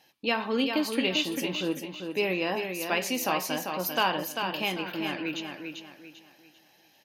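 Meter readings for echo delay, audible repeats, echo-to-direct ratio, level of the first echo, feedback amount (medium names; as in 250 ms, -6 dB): 394 ms, 4, -5.5 dB, -6.0 dB, 33%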